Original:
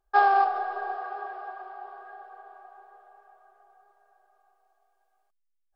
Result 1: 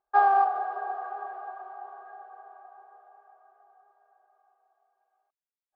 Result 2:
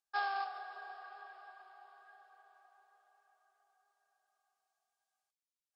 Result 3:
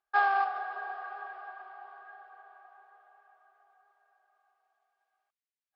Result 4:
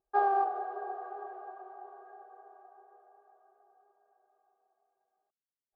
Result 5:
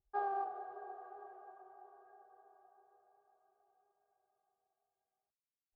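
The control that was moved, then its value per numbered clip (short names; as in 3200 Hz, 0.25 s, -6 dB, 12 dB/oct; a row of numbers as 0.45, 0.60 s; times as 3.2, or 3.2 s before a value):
band-pass, frequency: 820, 6200, 2100, 310, 100 Hz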